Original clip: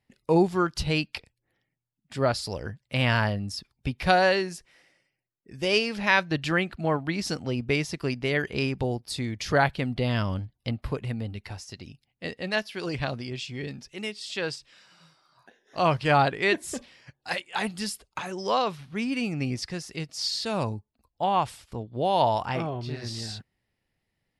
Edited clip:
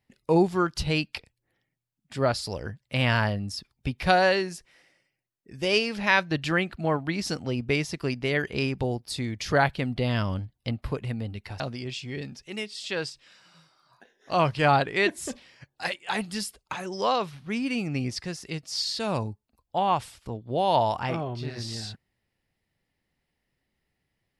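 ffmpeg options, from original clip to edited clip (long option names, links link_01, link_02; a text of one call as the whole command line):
ffmpeg -i in.wav -filter_complex "[0:a]asplit=2[link_01][link_02];[link_01]atrim=end=11.602[link_03];[link_02]atrim=start=13.058[link_04];[link_03][link_04]acrossfade=duration=0.004:curve1=hsin:curve2=hsin" out.wav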